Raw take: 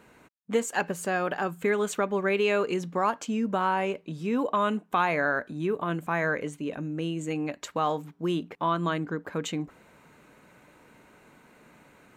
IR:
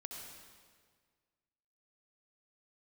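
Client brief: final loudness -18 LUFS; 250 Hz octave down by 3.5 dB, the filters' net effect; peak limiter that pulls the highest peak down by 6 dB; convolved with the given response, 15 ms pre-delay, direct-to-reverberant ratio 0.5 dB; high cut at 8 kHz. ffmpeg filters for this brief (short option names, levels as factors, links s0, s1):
-filter_complex "[0:a]lowpass=8000,equalizer=f=250:t=o:g=-5,alimiter=limit=0.112:level=0:latency=1,asplit=2[s0][s1];[1:a]atrim=start_sample=2205,adelay=15[s2];[s1][s2]afir=irnorm=-1:irlink=0,volume=1.33[s3];[s0][s3]amix=inputs=2:normalize=0,volume=3.35"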